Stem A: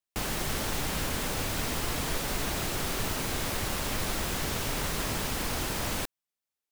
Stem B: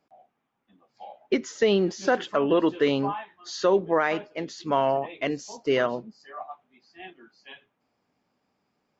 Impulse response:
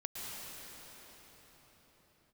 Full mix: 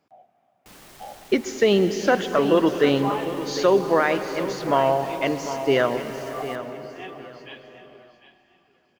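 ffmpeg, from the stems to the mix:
-filter_complex "[0:a]asoftclip=type=tanh:threshold=-27dB,adelay=500,volume=-14.5dB,asplit=2[a][b];[b]volume=-8.5dB[c];[1:a]equalizer=f=94:w=0.92:g=10,volume=1.5dB,asplit=3[d][e][f];[e]volume=-8dB[g];[f]volume=-10.5dB[h];[2:a]atrim=start_sample=2205[i];[c][g]amix=inputs=2:normalize=0[j];[j][i]afir=irnorm=-1:irlink=0[k];[h]aecho=0:1:750|1500|2250|3000:1|0.24|0.0576|0.0138[l];[a][d][k][l]amix=inputs=4:normalize=0,lowshelf=f=140:g=-9"

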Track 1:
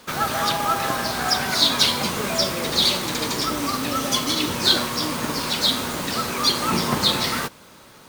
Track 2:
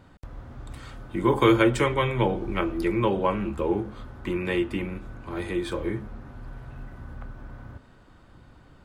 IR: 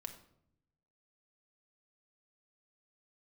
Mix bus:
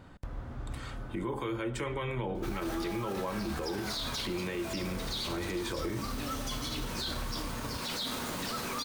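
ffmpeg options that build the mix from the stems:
-filter_complex "[0:a]adelay=2350,volume=-10.5dB,asplit=2[a][b];[b]volume=-6.5dB[c];[1:a]acompressor=threshold=-29dB:ratio=6,volume=0dB,asplit=3[d][e][f];[e]volume=-17dB[g];[f]apad=whole_len=460256[h];[a][h]sidechaincompress=threshold=-43dB:ratio=8:attack=7.3:release=172[i];[2:a]atrim=start_sample=2205[j];[c][g]amix=inputs=2:normalize=0[k];[k][j]afir=irnorm=-1:irlink=0[l];[i][d][l]amix=inputs=3:normalize=0,alimiter=level_in=2dB:limit=-24dB:level=0:latency=1:release=21,volume=-2dB"

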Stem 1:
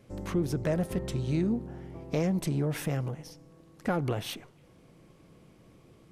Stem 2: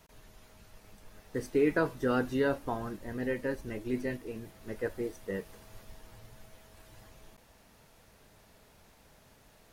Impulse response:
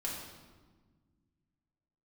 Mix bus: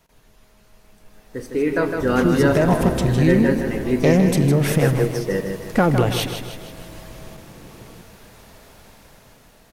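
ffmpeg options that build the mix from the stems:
-filter_complex "[0:a]adelay=1900,volume=0dB,asplit=2[a][b];[b]volume=-8.5dB[c];[1:a]volume=-1.5dB,asplit=3[d][e][f];[e]volume=-10.5dB[g];[f]volume=-5.5dB[h];[2:a]atrim=start_sample=2205[i];[g][i]afir=irnorm=-1:irlink=0[j];[c][h]amix=inputs=2:normalize=0,aecho=0:1:157|314|471|628|785|942|1099:1|0.51|0.26|0.133|0.0677|0.0345|0.0176[k];[a][d][j][k]amix=inputs=4:normalize=0,dynaudnorm=f=230:g=17:m=13.5dB"

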